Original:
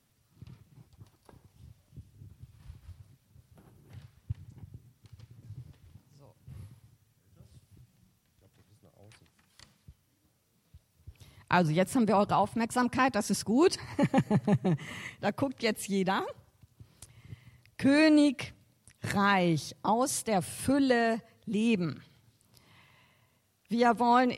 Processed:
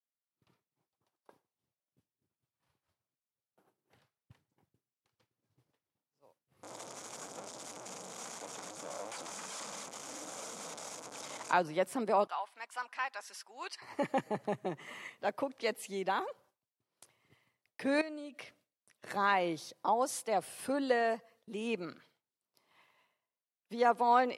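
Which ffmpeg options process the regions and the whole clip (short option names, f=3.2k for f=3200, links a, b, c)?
-filter_complex "[0:a]asettb=1/sr,asplit=3[a][b][c];[a]atrim=end=6.634[d];[b]atrim=start=6.63:end=11.53,asetpts=PTS-STARTPTS,afade=t=in:d=0.004:c=qsin,afade=t=out:st=4.896:d=0.004:c=qsin,aeval=exprs='val(0)+0.5*0.0355*sgn(val(0))':c=same,highpass=180,equalizer=f=370:t=q:w=4:g=-8,equalizer=f=1.8k:t=q:w=4:g=-8,equalizer=f=2.8k:t=q:w=4:g=-7,equalizer=f=4.2k:t=q:w=4:g=-6,equalizer=f=6.8k:t=q:w=4:g=7,lowpass=f=9.1k:w=0.5412,lowpass=f=9.1k:w=1.3066[e];[c]atrim=start=11.526[f];[d][e]acrossfade=d=0.004:c1=hsin:c2=qsin[g];[g][f]acrossfade=d=0.004:c1=qsin:c2=hsin,asettb=1/sr,asplit=3[h][i][j];[h]atrim=end=12.274[k];[i]atrim=start=12.27:end=13.82,asetpts=PTS-STARTPTS,afade=t=in:d=0.004:c=qsin,afade=t=out:st=1.546:d=0.004:c=qsin,highpass=1.4k,highshelf=f=5.4k:g=-10[l];[j]atrim=start=13.816[m];[k][l]acrossfade=d=0.004:c1=hsin:c2=qsin[n];[n][m]acrossfade=d=0.004:c1=qsin:c2=hsin,asettb=1/sr,asplit=3[o][p][q];[o]atrim=end=18.014[r];[p]atrim=start=18.01:end=19.11,asetpts=PTS-STARTPTS,afade=t=in:d=0.004:c=qsin,afade=t=out:st=1.096:d=0.004:c=qsin,equalizer=f=880:w=7.3:g=-6,acompressor=threshold=-37dB:ratio=4:attack=3.2:release=140:knee=1:detection=peak[s];[q]atrim=start=19.106[t];[r][s]acrossfade=d=0.004:c1=hsin:c2=qsin[u];[u][t]acrossfade=d=0.004:c1=qsin:c2=hsin,highpass=470,agate=range=-33dB:threshold=-58dB:ratio=3:detection=peak,tiltshelf=f=1.5k:g=4,volume=-3.5dB"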